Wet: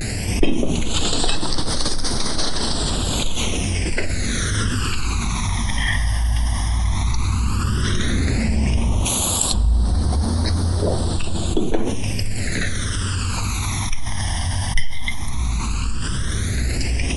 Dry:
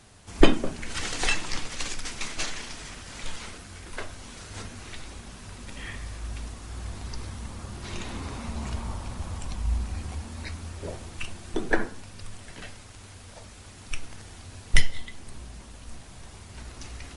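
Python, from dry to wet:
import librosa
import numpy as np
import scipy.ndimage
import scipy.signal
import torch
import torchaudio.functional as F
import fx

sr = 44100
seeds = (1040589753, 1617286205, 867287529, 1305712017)

y = fx.riaa(x, sr, side='recording', at=(9.04, 9.53), fade=0.02)
y = fx.vibrato(y, sr, rate_hz=0.68, depth_cents=61.0)
y = fx.phaser_stages(y, sr, stages=12, low_hz=430.0, high_hz=2500.0, hz=0.12, feedback_pct=25)
y = fx.env_flatten(y, sr, amount_pct=70)
y = y * librosa.db_to_amplitude(-3.0)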